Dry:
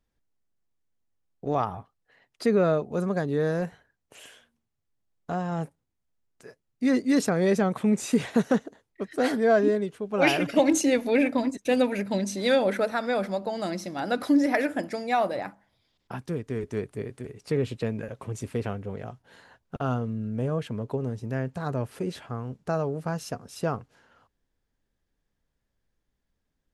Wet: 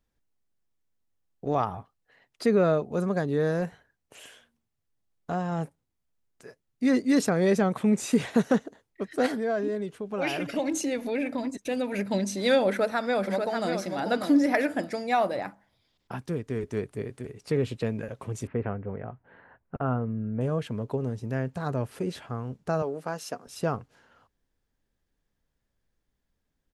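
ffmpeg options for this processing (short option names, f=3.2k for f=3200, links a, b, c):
-filter_complex "[0:a]asettb=1/sr,asplit=3[a][b][c];[a]atrim=end=9.264[d];[b]atrim=start=9.26:end=11.94,asetpts=PTS-STARTPTS,afade=t=in:d=0.004:c=qsin,afade=t=out:st=2.676:d=0.004:c=qsin,acompressor=threshold=-30dB:ratio=2:attack=3.2:release=140:knee=1:detection=peak[e];[c]atrim=start=11.936[f];[d][e]acrossfade=d=0.004:c1=hsin:c2=qsin[g];[g][f]acrossfade=d=0.004:c1=qsin:c2=hsin,asplit=2[h][i];[i]afade=t=in:st=12.68:d=0.01,afade=t=out:st=13.71:d=0.01,aecho=0:1:590|1180|1770:0.530884|0.106177|0.0212354[j];[h][j]amix=inputs=2:normalize=0,asettb=1/sr,asplit=3[k][l][m];[k]atrim=end=18.474[n];[l]atrim=start=18.47:end=20.41,asetpts=PTS-STARTPTS,afade=t=in:d=0.004:c=qsin,afade=t=out:st=1.936:d=0.004:c=qsin,lowpass=f=2.1k:w=0.5412,lowpass=f=2.1k:w=1.3066[o];[m]atrim=start=20.406[p];[n][o]acrossfade=d=0.004:c1=hsin:c2=qsin[q];[q][p]acrossfade=d=0.004:c1=qsin:c2=hsin,asettb=1/sr,asplit=3[r][s][t];[r]atrim=end=22.824[u];[s]atrim=start=22.82:end=23.47,asetpts=PTS-STARTPTS,afade=t=in:d=0.004:c=qsin,afade=t=out:st=0.646:d=0.004:c=qsin,highpass=280[v];[t]atrim=start=23.466[w];[u][v]acrossfade=d=0.004:c1=hsin:c2=qsin[x];[x][w]acrossfade=d=0.004:c1=qsin:c2=hsin"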